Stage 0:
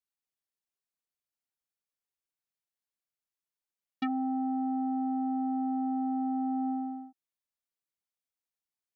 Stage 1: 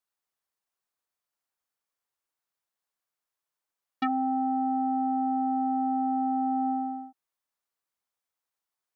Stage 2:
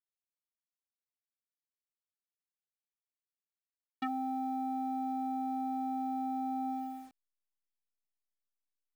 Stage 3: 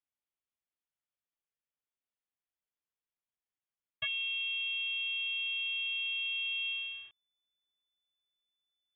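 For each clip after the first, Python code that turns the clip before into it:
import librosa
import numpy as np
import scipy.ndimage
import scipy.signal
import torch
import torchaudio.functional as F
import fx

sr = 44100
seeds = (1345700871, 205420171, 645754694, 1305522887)

y1 = fx.curve_eq(x, sr, hz=(210.0, 1100.0, 2500.0), db=(0, 10, 3))
y2 = fx.delta_hold(y1, sr, step_db=-48.0)
y2 = y2 * 10.0 ** (-8.0 / 20.0)
y3 = fx.freq_invert(y2, sr, carrier_hz=3500)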